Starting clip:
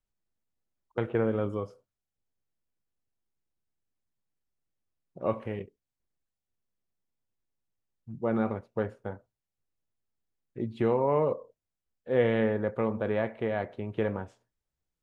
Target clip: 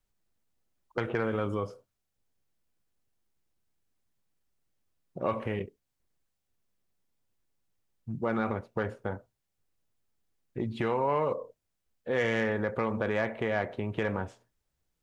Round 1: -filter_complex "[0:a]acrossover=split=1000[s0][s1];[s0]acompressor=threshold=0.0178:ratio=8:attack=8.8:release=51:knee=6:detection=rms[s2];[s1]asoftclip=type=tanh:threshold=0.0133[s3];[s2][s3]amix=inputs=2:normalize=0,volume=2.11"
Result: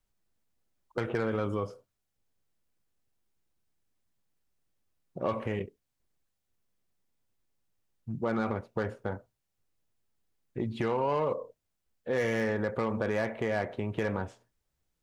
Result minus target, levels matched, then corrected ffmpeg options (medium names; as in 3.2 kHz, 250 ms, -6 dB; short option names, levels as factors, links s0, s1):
saturation: distortion +9 dB
-filter_complex "[0:a]acrossover=split=1000[s0][s1];[s0]acompressor=threshold=0.0178:ratio=8:attack=8.8:release=51:knee=6:detection=rms[s2];[s1]asoftclip=type=tanh:threshold=0.0376[s3];[s2][s3]amix=inputs=2:normalize=0,volume=2.11"